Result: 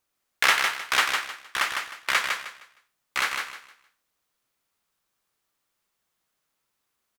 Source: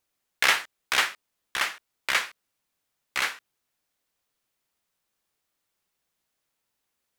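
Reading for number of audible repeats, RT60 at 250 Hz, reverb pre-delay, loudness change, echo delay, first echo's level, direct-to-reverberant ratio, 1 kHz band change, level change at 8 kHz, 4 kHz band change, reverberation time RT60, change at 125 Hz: 3, none, none, +1.5 dB, 0.155 s, -5.0 dB, none, +4.0 dB, +1.5 dB, +1.5 dB, none, n/a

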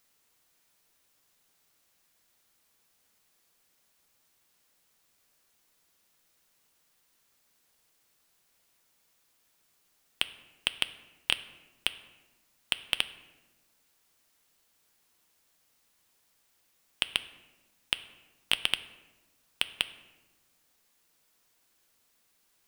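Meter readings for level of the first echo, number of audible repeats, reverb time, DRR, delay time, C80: none, none, 1.1 s, 11.5 dB, none, 16.5 dB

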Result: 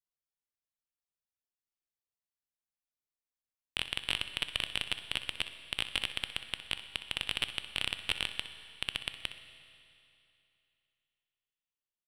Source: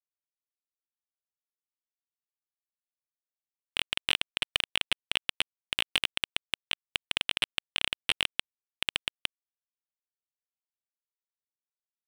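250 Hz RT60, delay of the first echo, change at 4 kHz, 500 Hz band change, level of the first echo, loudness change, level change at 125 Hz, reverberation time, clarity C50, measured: 2.8 s, 63 ms, -4.5 dB, -4.0 dB, -13.5 dB, -4.5 dB, +1.5 dB, 2.8 s, 9.0 dB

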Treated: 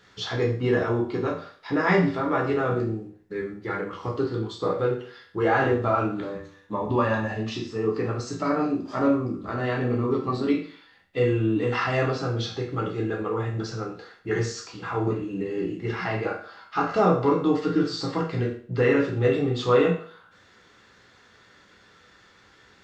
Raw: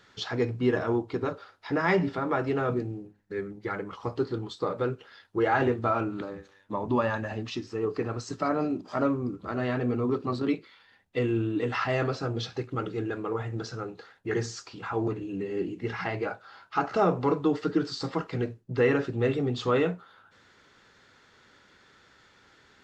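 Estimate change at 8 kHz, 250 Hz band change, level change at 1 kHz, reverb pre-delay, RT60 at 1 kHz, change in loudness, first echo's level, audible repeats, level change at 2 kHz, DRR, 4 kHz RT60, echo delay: n/a, +3.5 dB, +3.5 dB, 8 ms, 0.45 s, +3.5 dB, none, none, +4.0 dB, -1.0 dB, 0.45 s, none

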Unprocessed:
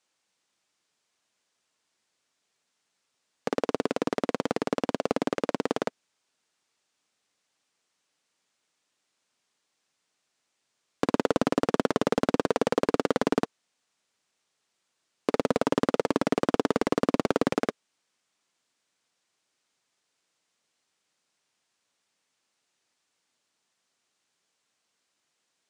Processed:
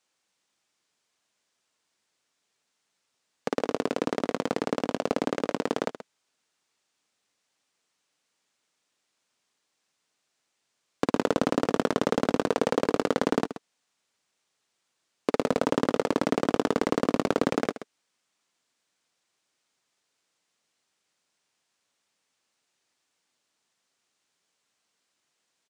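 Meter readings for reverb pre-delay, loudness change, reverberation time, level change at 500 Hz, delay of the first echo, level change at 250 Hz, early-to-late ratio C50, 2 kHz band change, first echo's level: none, 0.0 dB, none, 0.0 dB, 0.129 s, 0.0 dB, none, 0.0 dB, -12.5 dB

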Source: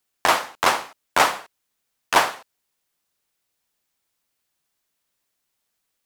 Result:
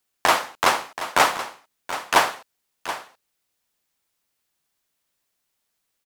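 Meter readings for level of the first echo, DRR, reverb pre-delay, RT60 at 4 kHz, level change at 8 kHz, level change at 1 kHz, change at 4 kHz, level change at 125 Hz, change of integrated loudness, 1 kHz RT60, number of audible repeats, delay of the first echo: -12.5 dB, none, none, none, 0.0 dB, 0.0 dB, 0.0 dB, +0.5 dB, -1.0 dB, none, 1, 0.728 s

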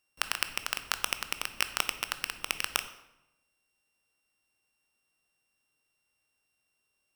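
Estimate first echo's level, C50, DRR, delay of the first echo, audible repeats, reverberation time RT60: none, 12.5 dB, 10.5 dB, none, none, 0.95 s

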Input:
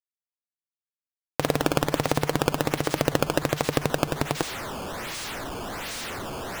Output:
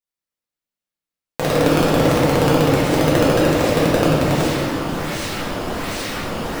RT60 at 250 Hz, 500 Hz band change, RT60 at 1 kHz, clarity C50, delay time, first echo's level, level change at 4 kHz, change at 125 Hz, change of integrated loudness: 3.9 s, +10.0 dB, 1.7 s, -3.0 dB, none, none, +7.0 dB, +10.5 dB, +9.5 dB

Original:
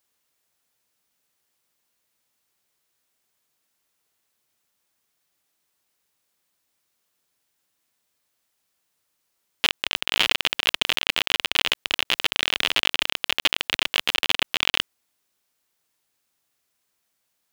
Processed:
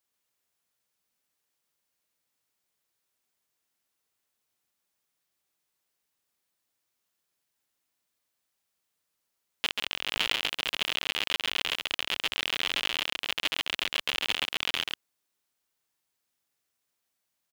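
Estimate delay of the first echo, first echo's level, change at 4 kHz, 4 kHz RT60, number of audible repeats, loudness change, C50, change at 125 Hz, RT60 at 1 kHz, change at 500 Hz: 0.136 s, -3.5 dB, -6.5 dB, none, 1, -6.5 dB, none, -6.5 dB, none, -6.5 dB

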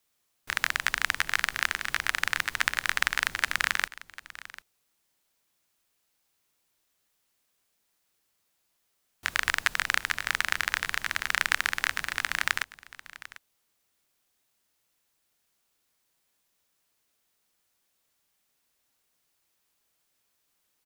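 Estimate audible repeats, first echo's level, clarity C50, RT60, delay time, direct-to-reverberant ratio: 1, -17.5 dB, none, none, 0.746 s, none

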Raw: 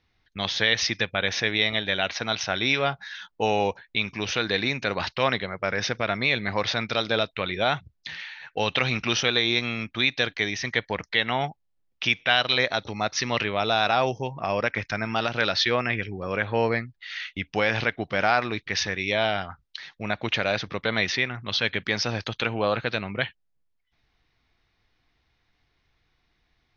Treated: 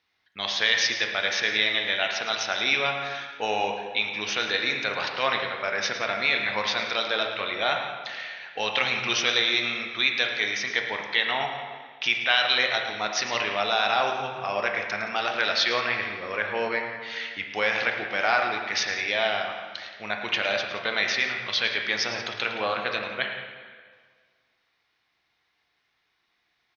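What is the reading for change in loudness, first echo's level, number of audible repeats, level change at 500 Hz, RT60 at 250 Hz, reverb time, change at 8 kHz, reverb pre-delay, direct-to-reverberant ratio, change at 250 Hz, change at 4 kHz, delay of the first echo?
0.0 dB, -12.0 dB, 2, -3.0 dB, 1.7 s, 1.7 s, n/a, 7 ms, 2.0 dB, -8.0 dB, +1.0 dB, 0.109 s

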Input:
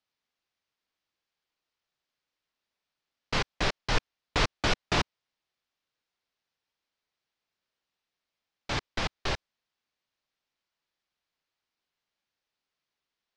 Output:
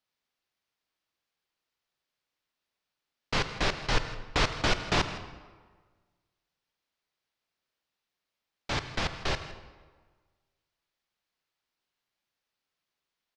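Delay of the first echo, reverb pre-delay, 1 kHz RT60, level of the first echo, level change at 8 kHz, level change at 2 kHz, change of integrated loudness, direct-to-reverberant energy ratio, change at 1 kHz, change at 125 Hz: 0.161 s, 36 ms, 1.5 s, -16.5 dB, +0.5 dB, +0.5 dB, +0.5 dB, 9.0 dB, +0.5 dB, +0.5 dB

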